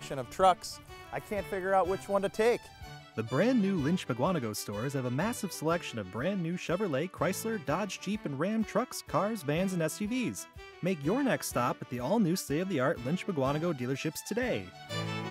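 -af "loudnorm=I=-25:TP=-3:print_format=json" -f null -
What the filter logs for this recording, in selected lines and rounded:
"input_i" : "-32.0",
"input_tp" : "-11.7",
"input_lra" : "1.9",
"input_thresh" : "-42.1",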